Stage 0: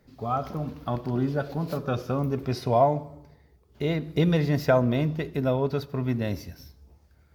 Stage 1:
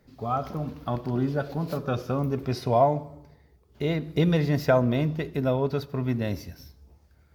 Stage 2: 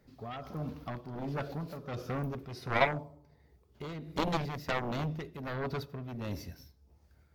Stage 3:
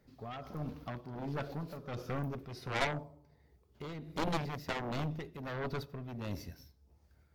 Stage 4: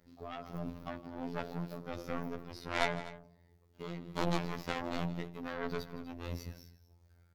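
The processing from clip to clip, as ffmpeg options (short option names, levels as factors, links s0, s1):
-af anull
-af "aeval=exprs='0.447*(cos(1*acos(clip(val(0)/0.447,-1,1)))-cos(1*PI/2))+0.158*(cos(7*acos(clip(val(0)/0.447,-1,1)))-cos(7*PI/2))':c=same,tremolo=f=1.4:d=0.59,volume=0.447"
-af "aeval=exprs='(tanh(22.4*val(0)+0.75)-tanh(0.75))/22.4':c=same,volume=1.26"
-af "aecho=1:1:161|247:0.141|0.133,afftfilt=real='hypot(re,im)*cos(PI*b)':imag='0':win_size=2048:overlap=0.75,volume=1.5"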